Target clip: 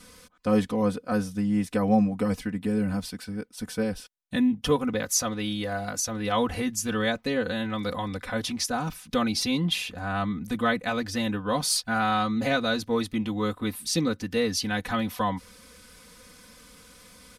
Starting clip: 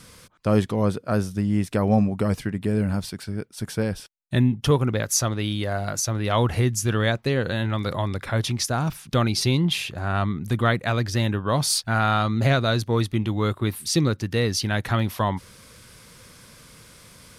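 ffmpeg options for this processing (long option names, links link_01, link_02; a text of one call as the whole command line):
ffmpeg -i in.wav -af "aecho=1:1:4:0.97,volume=-5.5dB" out.wav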